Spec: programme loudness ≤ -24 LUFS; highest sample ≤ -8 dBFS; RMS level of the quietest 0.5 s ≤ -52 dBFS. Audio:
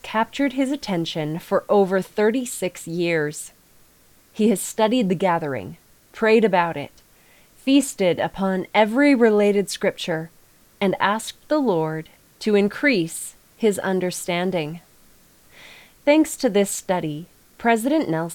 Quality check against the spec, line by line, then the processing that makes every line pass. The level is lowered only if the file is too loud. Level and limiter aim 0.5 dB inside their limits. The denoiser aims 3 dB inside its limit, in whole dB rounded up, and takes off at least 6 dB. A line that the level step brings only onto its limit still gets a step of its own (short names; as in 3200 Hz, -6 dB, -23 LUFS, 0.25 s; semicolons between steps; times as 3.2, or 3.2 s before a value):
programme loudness -21.0 LUFS: fail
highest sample -4.0 dBFS: fail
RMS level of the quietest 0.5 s -55 dBFS: OK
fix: gain -3.5 dB; limiter -8.5 dBFS